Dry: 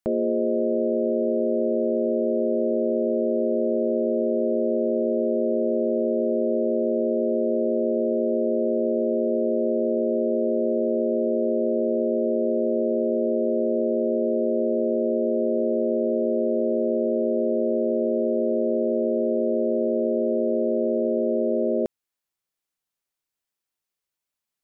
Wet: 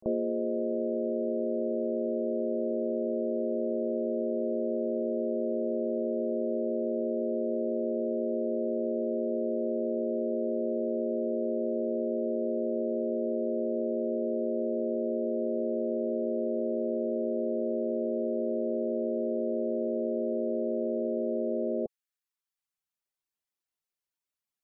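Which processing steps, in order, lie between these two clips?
gate on every frequency bin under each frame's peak −25 dB strong
reverb reduction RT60 0.77 s
echo ahead of the sound 35 ms −23 dB
level −4.5 dB

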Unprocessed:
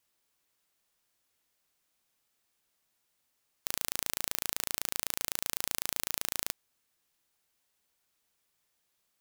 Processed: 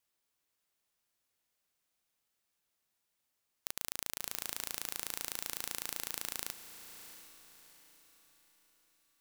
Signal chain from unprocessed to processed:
feedback delay with all-pass diffusion 689 ms, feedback 40%, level −11 dB
regular buffer underruns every 0.57 s, samples 256, repeat, from 0:00.88
level −5.5 dB

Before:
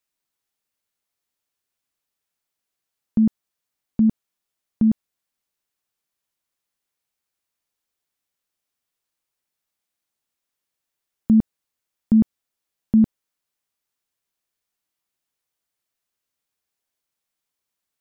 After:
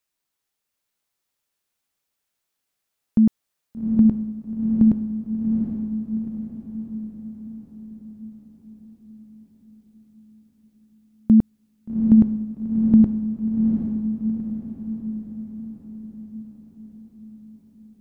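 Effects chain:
feedback delay with all-pass diffusion 782 ms, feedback 54%, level −4 dB
level +1.5 dB

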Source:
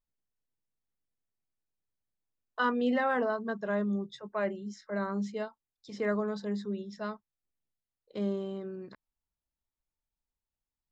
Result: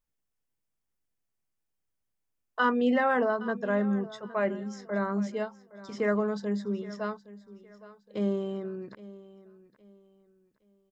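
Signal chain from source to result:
parametric band 4,000 Hz −6.5 dB 0.32 octaves
on a send: repeating echo 816 ms, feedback 31%, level −18 dB
on the sum: level +3.5 dB

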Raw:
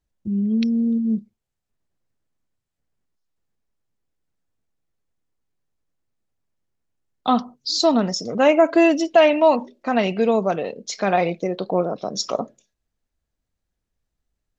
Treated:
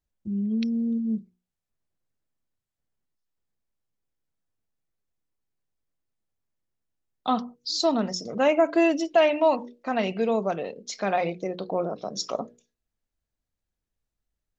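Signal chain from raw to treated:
mains-hum notches 60/120/180/240/300/360/420/480 Hz
level −5.5 dB

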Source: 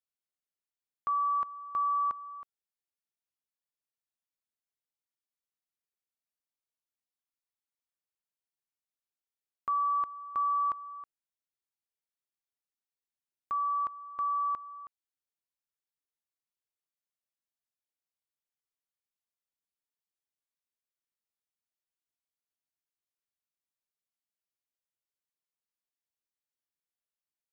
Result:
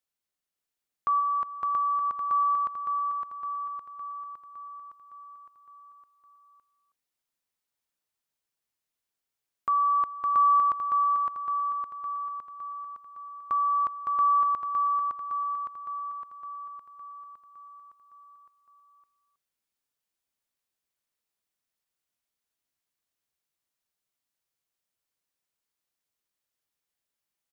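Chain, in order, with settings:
repeating echo 561 ms, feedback 59%, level −3.5 dB
0:01.19–0:02.30: downward compressor, threshold −30 dBFS, peak gain reduction 6 dB
level +5 dB

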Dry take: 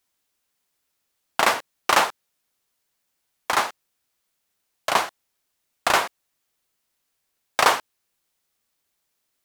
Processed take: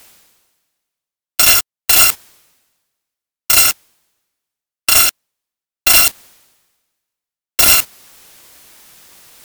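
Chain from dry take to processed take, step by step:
samples in bit-reversed order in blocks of 256 samples
noise gate −27 dBFS, range −34 dB
reversed playback
upward compression, threshold −22 dBFS
reversed playback
sine wavefolder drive 14 dB, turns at −1.5 dBFS
level −2 dB

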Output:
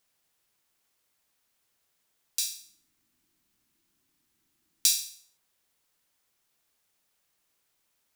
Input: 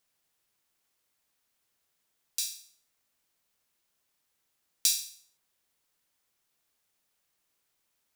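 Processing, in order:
0:02.46–0:05.06: low shelf with overshoot 390 Hz +7 dB, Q 3
level +2.5 dB

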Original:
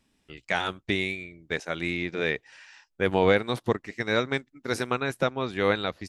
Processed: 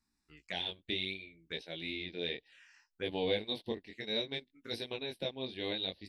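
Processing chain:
chorus effect 0.63 Hz, delay 17.5 ms, depth 5.9 ms
octave-band graphic EQ 125/2,000/4,000 Hz −6/−3/+11 dB
phaser swept by the level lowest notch 540 Hz, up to 1,300 Hz, full sweep at −30.5 dBFS
level −7 dB

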